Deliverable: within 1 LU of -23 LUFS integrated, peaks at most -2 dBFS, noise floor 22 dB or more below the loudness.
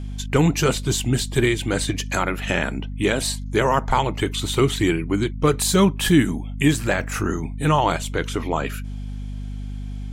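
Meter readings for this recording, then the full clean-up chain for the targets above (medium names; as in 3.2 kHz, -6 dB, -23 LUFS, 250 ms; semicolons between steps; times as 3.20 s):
hum 50 Hz; highest harmonic 250 Hz; hum level -27 dBFS; loudness -21.5 LUFS; peak level -5.0 dBFS; loudness target -23.0 LUFS
-> hum notches 50/100/150/200/250 Hz; trim -1.5 dB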